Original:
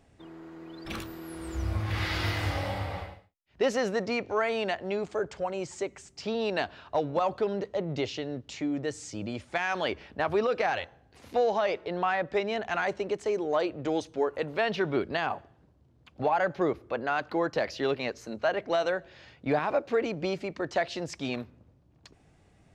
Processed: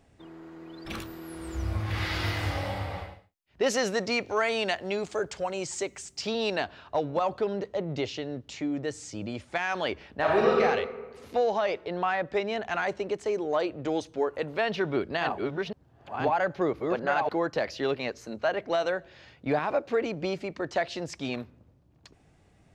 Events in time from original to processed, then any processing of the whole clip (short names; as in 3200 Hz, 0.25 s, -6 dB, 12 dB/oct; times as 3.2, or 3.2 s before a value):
3.66–6.56 high shelf 2900 Hz +10.5 dB
10.19–10.61 reverb throw, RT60 1.3 s, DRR -3.5 dB
14.69–17.35 reverse delay 0.52 s, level -3 dB